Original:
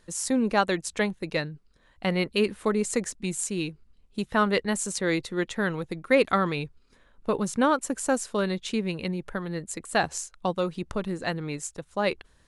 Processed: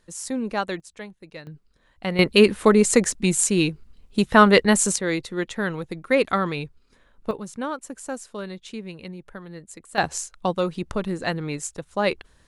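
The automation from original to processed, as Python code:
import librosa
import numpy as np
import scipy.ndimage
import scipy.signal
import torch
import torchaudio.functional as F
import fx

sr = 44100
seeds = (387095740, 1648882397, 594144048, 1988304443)

y = fx.gain(x, sr, db=fx.steps((0.0, -3.0), (0.8, -12.0), (1.47, -0.5), (2.19, 9.5), (4.96, 1.0), (7.31, -7.0), (9.98, 3.5)))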